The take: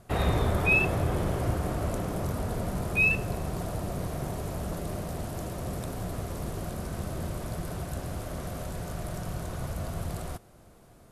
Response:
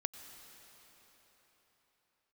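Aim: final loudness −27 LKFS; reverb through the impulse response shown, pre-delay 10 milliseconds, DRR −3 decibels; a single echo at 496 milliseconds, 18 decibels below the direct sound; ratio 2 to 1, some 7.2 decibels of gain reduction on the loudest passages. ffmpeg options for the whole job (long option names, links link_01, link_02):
-filter_complex "[0:a]acompressor=threshold=-33dB:ratio=2,aecho=1:1:496:0.126,asplit=2[link_01][link_02];[1:a]atrim=start_sample=2205,adelay=10[link_03];[link_02][link_03]afir=irnorm=-1:irlink=0,volume=3.5dB[link_04];[link_01][link_04]amix=inputs=2:normalize=0,volume=3.5dB"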